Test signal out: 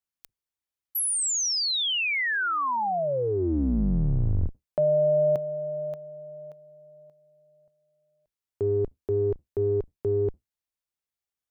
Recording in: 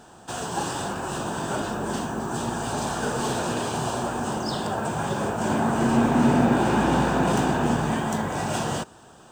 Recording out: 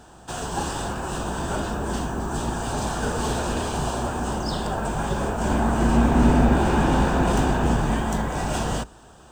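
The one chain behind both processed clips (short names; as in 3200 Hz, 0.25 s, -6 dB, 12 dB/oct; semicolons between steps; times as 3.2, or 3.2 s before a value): octaver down 2 oct, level +1 dB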